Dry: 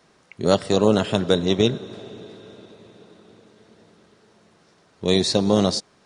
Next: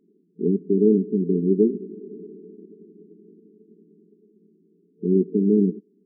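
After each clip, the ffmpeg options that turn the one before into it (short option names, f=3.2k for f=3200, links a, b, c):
-af "afftfilt=real='re*between(b*sr/4096,170,450)':imag='im*between(b*sr/4096,170,450)':win_size=4096:overlap=0.75,volume=2dB"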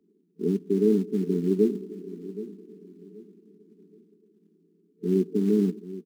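-filter_complex "[0:a]acrossover=split=150|240[a][b][c];[b]acrusher=bits=5:mode=log:mix=0:aa=0.000001[d];[a][d][c]amix=inputs=3:normalize=0,aecho=1:1:776|1552|2328:0.178|0.0533|0.016,volume=-4dB"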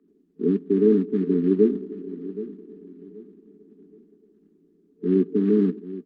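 -af "highpass=f=130:w=0.5412,highpass=f=130:w=1.3066,equalizer=f=270:t=q:w=4:g=9,equalizer=f=450:t=q:w=4:g=4,equalizer=f=1.2k:t=q:w=4:g=9,equalizer=f=1.7k:t=q:w=4:g=8,lowpass=f=3.9k:w=0.5412,lowpass=f=3.9k:w=1.3066" -ar 48000 -c:a libopus -b:a 48k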